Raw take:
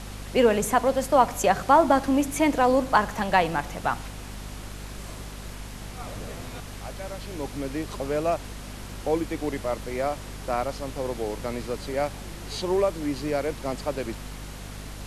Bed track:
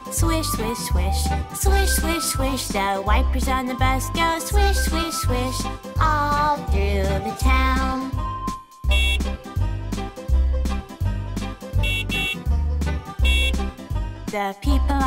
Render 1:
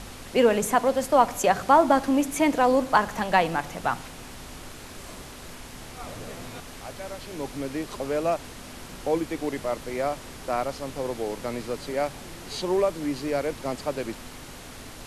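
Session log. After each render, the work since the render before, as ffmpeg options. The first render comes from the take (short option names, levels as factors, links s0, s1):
-af "bandreject=f=50:t=h:w=4,bandreject=f=100:t=h:w=4,bandreject=f=150:t=h:w=4,bandreject=f=200:t=h:w=4"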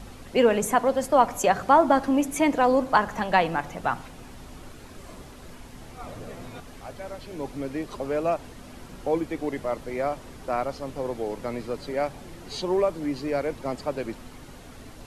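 -af "afftdn=nr=8:nf=-42"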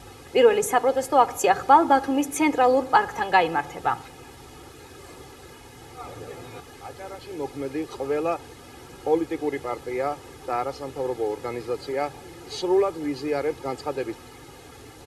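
-af "highpass=92,aecho=1:1:2.4:0.73"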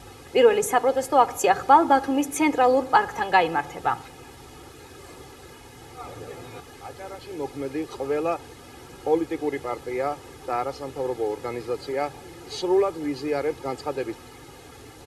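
-af anull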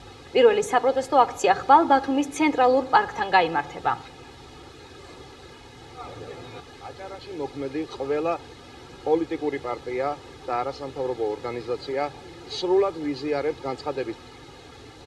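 -af "lowpass=6100,equalizer=f=3900:w=3.4:g=5.5"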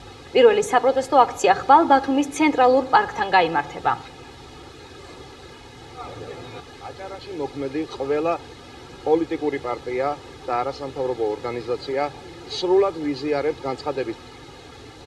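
-af "volume=1.41,alimiter=limit=0.708:level=0:latency=1"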